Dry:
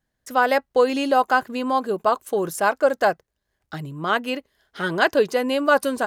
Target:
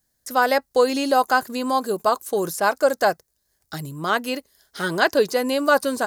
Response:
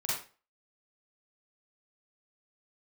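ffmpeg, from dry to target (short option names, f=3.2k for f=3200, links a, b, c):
-filter_complex "[0:a]acrossover=split=4200[a][b];[b]acompressor=threshold=-47dB:ratio=4:attack=1:release=60[c];[a][c]amix=inputs=2:normalize=0,aexciter=amount=4.3:drive=6:freq=4.2k"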